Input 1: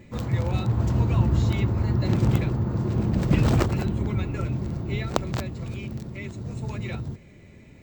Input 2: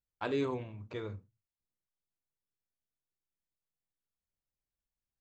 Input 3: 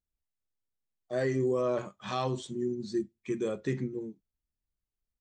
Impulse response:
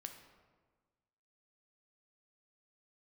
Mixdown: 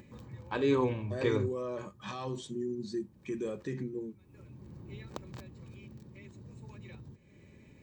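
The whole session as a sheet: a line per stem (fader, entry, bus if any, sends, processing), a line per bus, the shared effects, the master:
-16.5 dB, 0.00 s, no send, auto duck -20 dB, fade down 1.45 s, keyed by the third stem
+1.5 dB, 0.30 s, no send, AGC gain up to 9 dB
-1.0 dB, 0.00 s, no send, limiter -26.5 dBFS, peak gain reduction 7 dB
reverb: off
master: upward compressor, threshold -44 dBFS; notch comb 690 Hz

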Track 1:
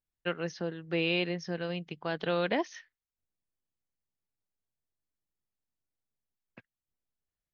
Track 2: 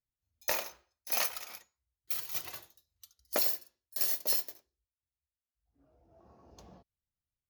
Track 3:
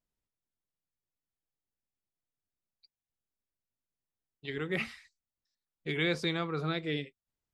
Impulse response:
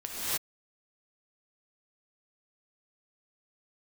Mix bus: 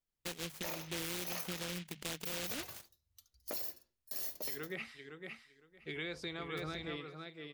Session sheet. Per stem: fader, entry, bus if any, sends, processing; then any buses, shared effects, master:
-1.5 dB, 0.00 s, bus A, no send, no echo send, notches 50/100/150/200 Hz; noise-modulated delay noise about 2700 Hz, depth 0.35 ms
-6.0 dB, 0.15 s, no bus, no send, no echo send, low shelf 400 Hz +9 dB
-6.5 dB, 0.00 s, bus A, no send, echo send -7 dB, low shelf 180 Hz -9 dB
bus A: 0.0 dB, compressor 6:1, threshold -37 dBFS, peak gain reduction 11 dB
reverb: off
echo: feedback echo 0.51 s, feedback 17%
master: limiter -29 dBFS, peak gain reduction 9.5 dB

